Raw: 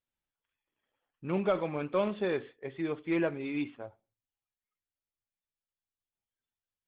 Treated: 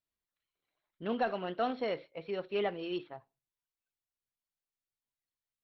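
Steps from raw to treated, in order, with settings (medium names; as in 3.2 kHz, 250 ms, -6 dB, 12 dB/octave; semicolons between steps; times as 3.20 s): wide varispeed 1.22×; trim -3 dB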